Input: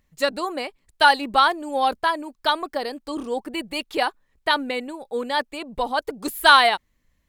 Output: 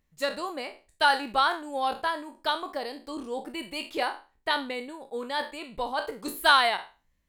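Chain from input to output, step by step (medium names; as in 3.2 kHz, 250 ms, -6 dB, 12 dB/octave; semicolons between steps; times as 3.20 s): spectral sustain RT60 0.32 s; trim -7.5 dB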